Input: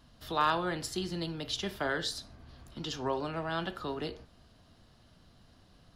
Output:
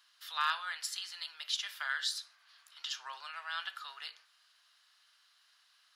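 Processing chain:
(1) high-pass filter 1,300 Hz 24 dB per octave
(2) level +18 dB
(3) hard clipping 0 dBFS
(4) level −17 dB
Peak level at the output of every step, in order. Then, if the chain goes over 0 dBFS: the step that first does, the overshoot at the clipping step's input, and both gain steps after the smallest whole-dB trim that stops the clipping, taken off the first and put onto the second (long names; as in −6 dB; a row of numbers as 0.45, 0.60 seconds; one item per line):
−20.0, −2.0, −2.0, −19.0 dBFS
no step passes full scale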